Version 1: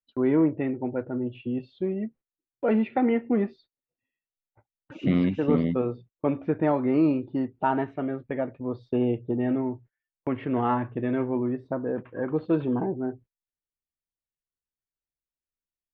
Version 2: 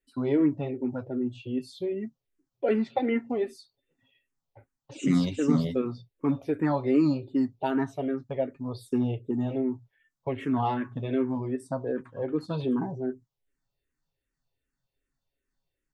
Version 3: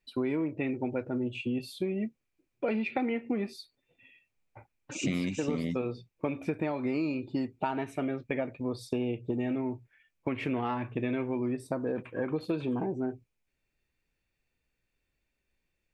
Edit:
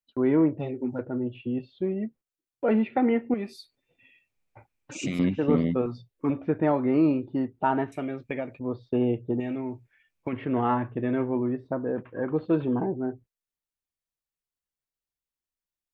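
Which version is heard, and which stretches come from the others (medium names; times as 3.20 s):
1
0.59–0.99 s: from 2
3.34–5.19 s: from 3
5.86–6.30 s: from 2
7.92–8.59 s: from 3
9.40–10.33 s: from 3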